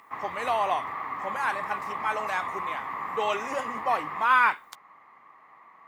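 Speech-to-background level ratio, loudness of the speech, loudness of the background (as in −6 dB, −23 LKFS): 6.0 dB, −28.0 LKFS, −34.0 LKFS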